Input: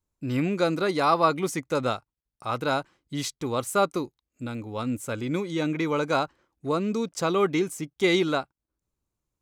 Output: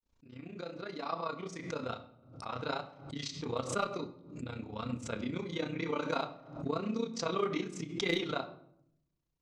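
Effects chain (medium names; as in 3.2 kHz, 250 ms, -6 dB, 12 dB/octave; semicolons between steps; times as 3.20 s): fade-in on the opening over 3.09 s; low-pass 5.5 kHz 24 dB/octave; treble shelf 3.8 kHz +5.5 dB; in parallel at +1.5 dB: compression 6:1, threshold -35 dBFS, peak gain reduction 17 dB; on the sum: chorus 1 Hz, delay 17 ms, depth 6.3 ms; hard clipper -14.5 dBFS, distortion -30 dB; AM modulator 30 Hz, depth 75%; on a send at -8 dB: reverberation RT60 0.70 s, pre-delay 4 ms; on the sum: swell ahead of each attack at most 94 dB/s; trim -6 dB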